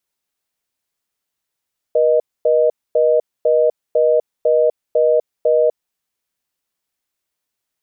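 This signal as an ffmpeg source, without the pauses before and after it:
ffmpeg -f lavfi -i "aevalsrc='0.211*(sin(2*PI*480*t)+sin(2*PI*620*t))*clip(min(mod(t,0.5),0.25-mod(t,0.5))/0.005,0,1)':duration=3.97:sample_rate=44100" out.wav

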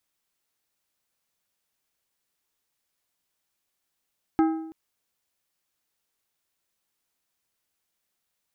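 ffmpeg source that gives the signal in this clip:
ffmpeg -f lavfi -i "aevalsrc='0.168*pow(10,-3*t/0.79)*sin(2*PI*321*t)+0.0708*pow(10,-3*t/0.6)*sin(2*PI*802.5*t)+0.0299*pow(10,-3*t/0.521)*sin(2*PI*1284*t)+0.0126*pow(10,-3*t/0.487)*sin(2*PI*1605*t)+0.00531*pow(10,-3*t/0.451)*sin(2*PI*2086.5*t)':duration=0.33:sample_rate=44100" out.wav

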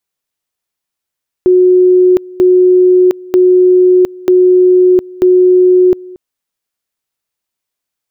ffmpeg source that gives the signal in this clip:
ffmpeg -f lavfi -i "aevalsrc='pow(10,(-3.5-23*gte(mod(t,0.94),0.71))/20)*sin(2*PI*365*t)':duration=4.7:sample_rate=44100" out.wav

